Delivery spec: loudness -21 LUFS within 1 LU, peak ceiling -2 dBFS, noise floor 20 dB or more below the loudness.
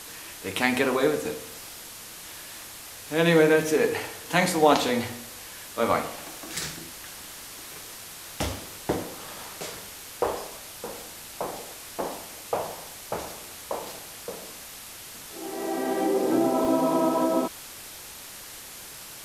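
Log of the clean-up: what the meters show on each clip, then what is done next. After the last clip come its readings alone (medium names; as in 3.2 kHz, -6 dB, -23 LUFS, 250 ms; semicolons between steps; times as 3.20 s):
dropouts 4; longest dropout 1.1 ms; noise floor -43 dBFS; noise floor target -47 dBFS; loudness -27.0 LUFS; peak level -5.5 dBFS; loudness target -21.0 LUFS
-> interpolate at 5.93/6.69/8.55/16.65 s, 1.1 ms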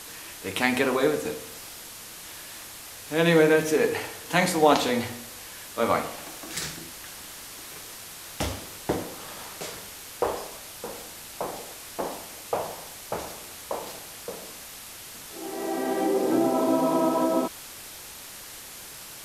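dropouts 0; noise floor -43 dBFS; noise floor target -47 dBFS
-> noise reduction 6 dB, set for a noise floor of -43 dBFS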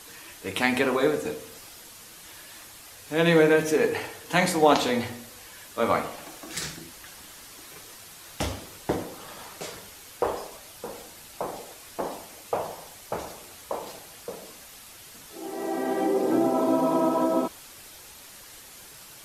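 noise floor -47 dBFS; loudness -26.5 LUFS; peak level -5.5 dBFS; loudness target -21.0 LUFS
-> trim +5.5 dB; peak limiter -2 dBFS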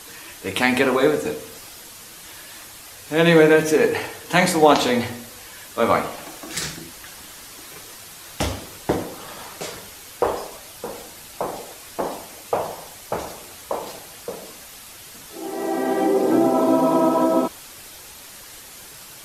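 loudness -21.0 LUFS; peak level -2.0 dBFS; noise floor -42 dBFS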